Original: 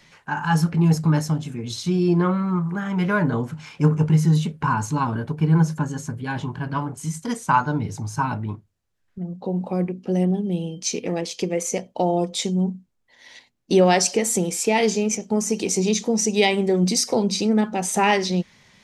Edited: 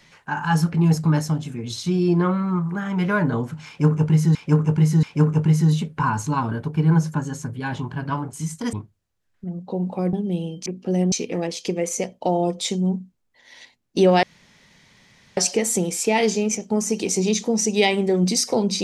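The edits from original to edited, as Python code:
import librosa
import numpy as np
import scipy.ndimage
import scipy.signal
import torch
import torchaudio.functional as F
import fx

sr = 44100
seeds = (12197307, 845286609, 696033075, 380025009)

y = fx.edit(x, sr, fx.repeat(start_s=3.67, length_s=0.68, count=3),
    fx.cut(start_s=7.37, length_s=1.1),
    fx.move(start_s=9.87, length_s=0.46, to_s=10.86),
    fx.insert_room_tone(at_s=13.97, length_s=1.14), tone=tone)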